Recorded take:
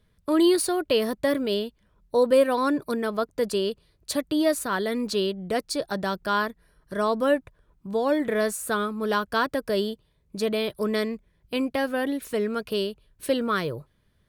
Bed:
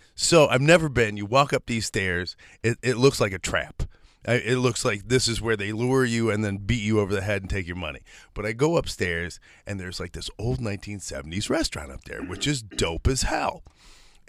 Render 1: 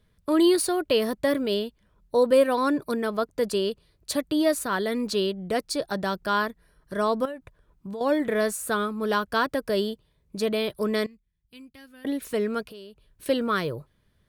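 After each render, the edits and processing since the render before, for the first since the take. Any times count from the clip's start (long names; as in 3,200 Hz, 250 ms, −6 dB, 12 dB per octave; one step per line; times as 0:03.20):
0:07.25–0:08.01: downward compressor 16 to 1, threshold −31 dBFS
0:11.06–0:12.05: guitar amp tone stack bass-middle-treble 6-0-2
0:12.65–0:13.26: downward compressor 4 to 1, threshold −44 dBFS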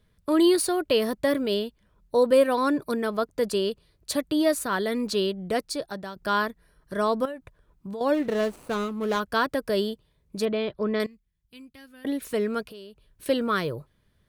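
0:05.56–0:06.16: fade out, to −13 dB
0:08.14–0:09.20: running median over 25 samples
0:10.45–0:11.00: high-frequency loss of the air 240 metres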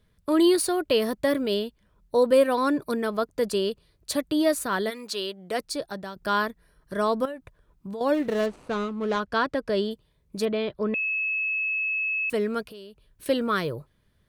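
0:04.89–0:05.58: high-pass filter 1,500 Hz → 450 Hz 6 dB per octave
0:08.46–0:09.91: high-frequency loss of the air 75 metres
0:10.94–0:12.30: beep over 2,590 Hz −24 dBFS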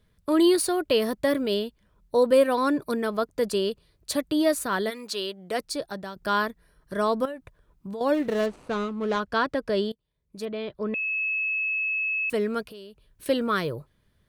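0:09.92–0:11.23: fade in, from −22.5 dB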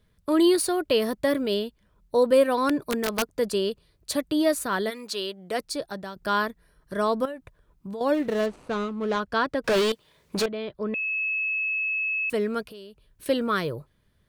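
0:02.69–0:03.30: wrap-around overflow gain 17 dB
0:09.64–0:10.46: mid-hump overdrive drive 34 dB, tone 4,700 Hz, clips at −16 dBFS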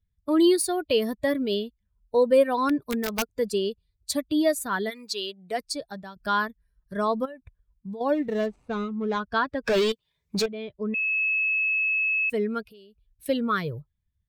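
spectral dynamics exaggerated over time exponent 1.5
in parallel at −3 dB: downward compressor, threshold −32 dBFS, peak gain reduction 15.5 dB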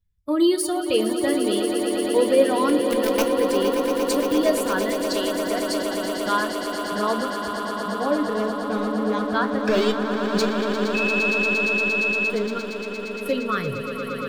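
echo that builds up and dies away 116 ms, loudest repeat 8, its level −10.5 dB
rectangular room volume 120 cubic metres, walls furnished, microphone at 0.47 metres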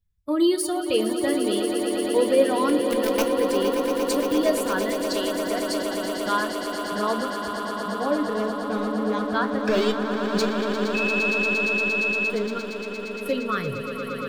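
level −1.5 dB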